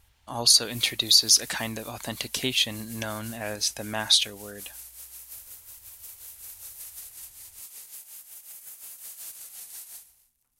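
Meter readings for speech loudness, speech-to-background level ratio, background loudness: -23.0 LUFS, 18.5 dB, -41.5 LUFS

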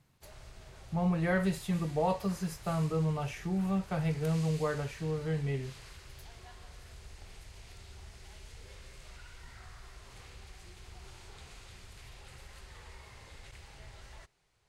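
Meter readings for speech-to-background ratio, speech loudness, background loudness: 19.0 dB, -32.5 LUFS, -51.5 LUFS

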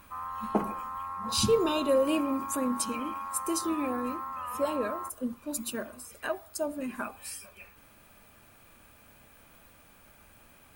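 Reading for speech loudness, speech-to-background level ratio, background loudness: -31.5 LUFS, 6.0 dB, -37.5 LUFS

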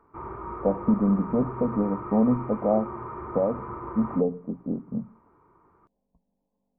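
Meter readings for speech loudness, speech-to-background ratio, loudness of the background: -26.5 LUFS, 10.5 dB, -37.0 LUFS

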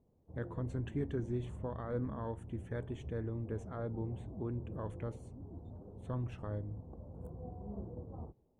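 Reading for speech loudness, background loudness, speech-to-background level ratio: -41.5 LUFS, -49.0 LUFS, 7.5 dB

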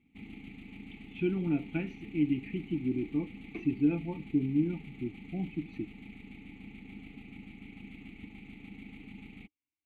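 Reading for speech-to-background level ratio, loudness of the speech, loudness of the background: 15.0 dB, -33.5 LUFS, -48.5 LUFS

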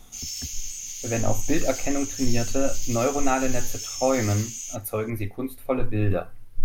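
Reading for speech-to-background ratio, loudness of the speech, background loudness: 5.0 dB, -27.0 LUFS, -32.0 LUFS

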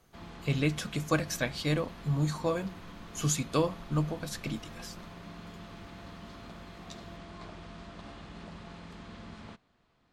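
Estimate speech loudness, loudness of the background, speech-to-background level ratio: -32.0 LUFS, -47.0 LUFS, 15.0 dB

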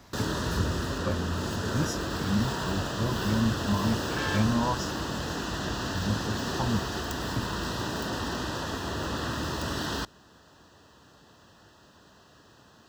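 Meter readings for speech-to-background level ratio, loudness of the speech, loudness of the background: -1.0 dB, -32.5 LUFS, -31.5 LUFS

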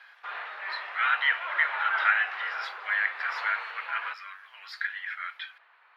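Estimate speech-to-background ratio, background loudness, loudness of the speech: 5.5 dB, -34.5 LUFS, -29.0 LUFS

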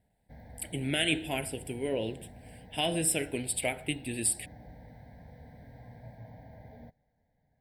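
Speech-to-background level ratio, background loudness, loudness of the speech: 20.0 dB, -51.5 LUFS, -31.5 LUFS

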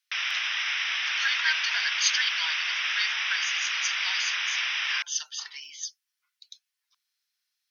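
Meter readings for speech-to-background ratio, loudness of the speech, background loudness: -4.0 dB, -30.5 LUFS, -26.5 LUFS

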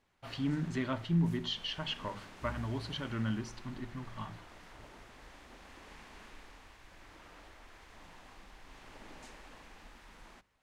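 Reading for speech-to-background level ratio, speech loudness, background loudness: 17.0 dB, -36.5 LUFS, -53.5 LUFS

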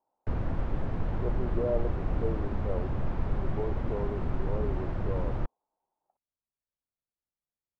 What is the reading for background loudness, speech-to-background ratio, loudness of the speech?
-34.0 LUFS, -3.5 dB, -37.5 LUFS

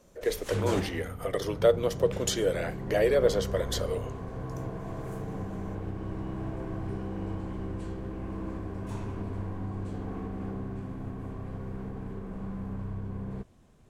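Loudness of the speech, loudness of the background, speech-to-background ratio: -29.0 LUFS, -37.0 LUFS, 8.0 dB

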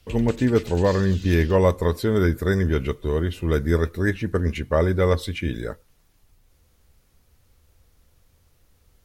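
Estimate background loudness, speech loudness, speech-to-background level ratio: -41.0 LUFS, -22.5 LUFS, 18.5 dB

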